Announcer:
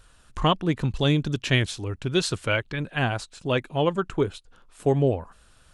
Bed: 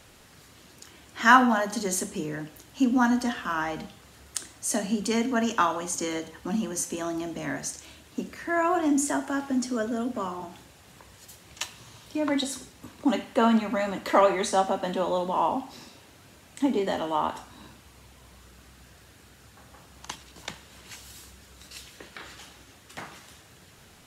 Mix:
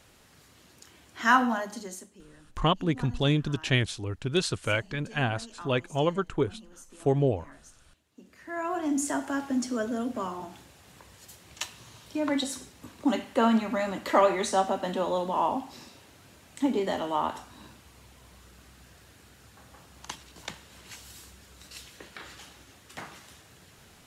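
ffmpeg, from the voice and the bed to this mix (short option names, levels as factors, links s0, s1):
-filter_complex "[0:a]adelay=2200,volume=0.708[s0];[1:a]volume=5.62,afade=t=out:st=1.49:d=0.61:silence=0.149624,afade=t=in:st=8.18:d=1.07:silence=0.105925[s1];[s0][s1]amix=inputs=2:normalize=0"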